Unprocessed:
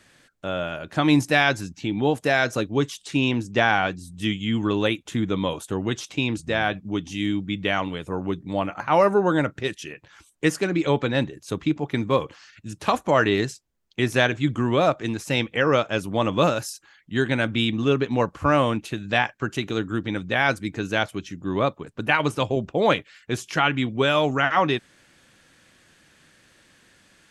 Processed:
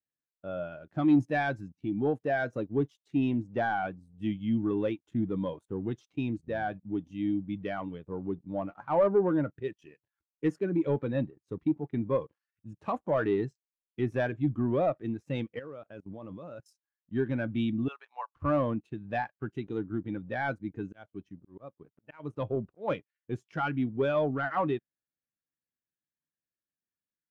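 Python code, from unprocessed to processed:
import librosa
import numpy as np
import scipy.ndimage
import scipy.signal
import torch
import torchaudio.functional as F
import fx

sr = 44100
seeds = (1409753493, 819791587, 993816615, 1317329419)

y = fx.level_steps(x, sr, step_db=16, at=(15.59, 16.66))
y = fx.cheby1_bandpass(y, sr, low_hz=790.0, high_hz=6400.0, order=3, at=(17.88, 18.36))
y = fx.auto_swell(y, sr, attack_ms=314.0, at=(20.79, 22.88))
y = fx.high_shelf(y, sr, hz=2500.0, db=-8.5)
y = fx.leveller(y, sr, passes=2)
y = fx.spectral_expand(y, sr, expansion=1.5)
y = y * 10.0 ** (-8.5 / 20.0)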